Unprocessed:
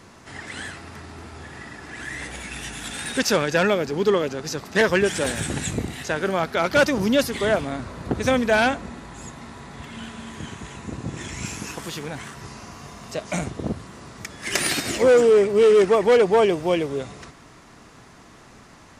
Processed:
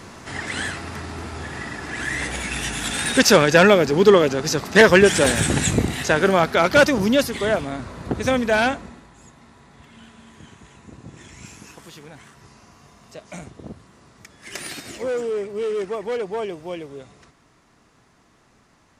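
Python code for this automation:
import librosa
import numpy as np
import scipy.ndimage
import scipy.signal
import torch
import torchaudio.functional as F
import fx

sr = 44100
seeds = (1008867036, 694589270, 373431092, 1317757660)

y = fx.gain(x, sr, db=fx.line((6.22, 7.0), (7.4, 0.0), (8.71, 0.0), (9.13, -10.0)))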